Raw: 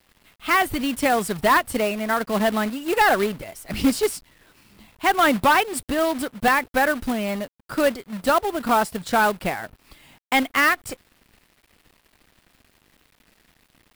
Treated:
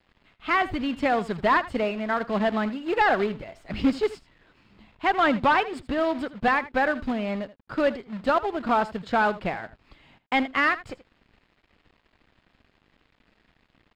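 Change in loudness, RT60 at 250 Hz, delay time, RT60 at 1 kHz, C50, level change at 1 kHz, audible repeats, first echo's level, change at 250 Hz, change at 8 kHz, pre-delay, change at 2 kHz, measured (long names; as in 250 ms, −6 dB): −3.5 dB, no reverb audible, 80 ms, no reverb audible, no reverb audible, −3.0 dB, 1, −16.5 dB, −2.5 dB, below −20 dB, no reverb audible, −4.0 dB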